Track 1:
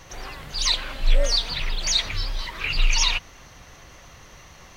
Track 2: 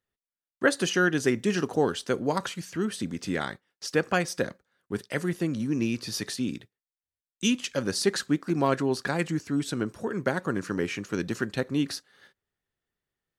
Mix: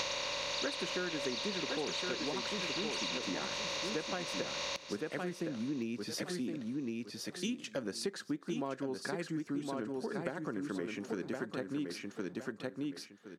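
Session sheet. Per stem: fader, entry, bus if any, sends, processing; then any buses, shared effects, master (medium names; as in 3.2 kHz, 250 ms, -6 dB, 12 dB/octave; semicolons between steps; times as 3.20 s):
-6.5 dB, 0.00 s, no send, echo send -17 dB, spectral levelling over time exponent 0.2; treble shelf 3.5 kHz -11 dB
-2.5 dB, 0.00 s, no send, echo send -5.5 dB, tilt EQ -1.5 dB/octave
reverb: none
echo: feedback delay 1065 ms, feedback 19%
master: high-pass 220 Hz 12 dB/octave; compression 5:1, threshold -35 dBFS, peak gain reduction 16 dB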